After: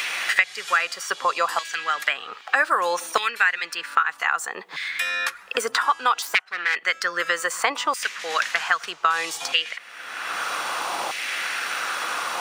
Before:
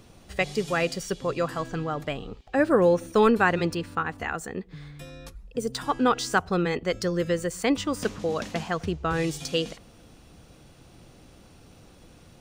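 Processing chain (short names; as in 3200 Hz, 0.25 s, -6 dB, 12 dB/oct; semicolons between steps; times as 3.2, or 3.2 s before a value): 6.22–6.76 self-modulated delay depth 0.36 ms; LFO high-pass saw down 0.63 Hz 880–2200 Hz; three-band squash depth 100%; gain +5 dB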